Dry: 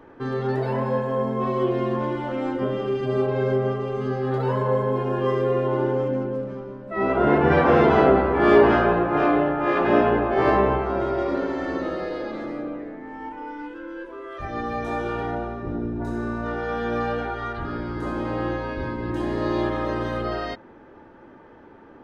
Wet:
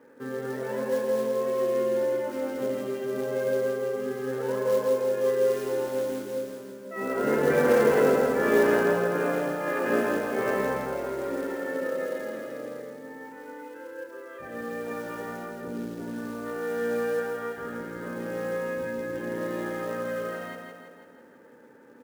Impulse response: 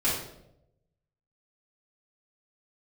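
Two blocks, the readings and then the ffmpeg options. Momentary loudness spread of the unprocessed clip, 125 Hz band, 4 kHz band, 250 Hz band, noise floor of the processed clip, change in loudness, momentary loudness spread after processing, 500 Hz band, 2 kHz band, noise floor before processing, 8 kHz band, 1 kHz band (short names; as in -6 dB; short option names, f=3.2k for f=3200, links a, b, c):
15 LU, -13.5 dB, -5.0 dB, -7.5 dB, -51 dBFS, -4.5 dB, 17 LU, -3.0 dB, -3.5 dB, -48 dBFS, n/a, -9.5 dB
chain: -filter_complex "[0:a]highpass=190,equalizer=f=240:t=q:w=4:g=7,equalizer=f=340:t=q:w=4:g=-9,equalizer=f=500:t=q:w=4:g=10,equalizer=f=710:t=q:w=4:g=-9,equalizer=f=1.1k:t=q:w=4:g=-6,equalizer=f=1.7k:t=q:w=4:g=4,lowpass=f=2.9k:w=0.5412,lowpass=f=2.9k:w=1.3066,acrusher=bits=5:mode=log:mix=0:aa=0.000001,aecho=1:1:165|330|495|660|825|990|1155:0.562|0.304|0.164|0.0885|0.0478|0.0258|0.0139,asplit=2[a][b];[1:a]atrim=start_sample=2205[c];[b][c]afir=irnorm=-1:irlink=0,volume=-26dB[d];[a][d]amix=inputs=2:normalize=0,volume=-7.5dB"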